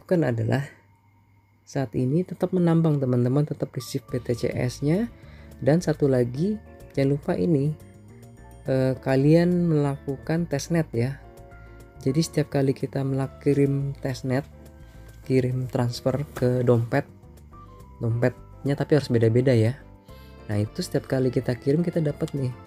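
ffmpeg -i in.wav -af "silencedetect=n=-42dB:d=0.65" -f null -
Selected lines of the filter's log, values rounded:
silence_start: 0.74
silence_end: 1.68 | silence_duration: 0.95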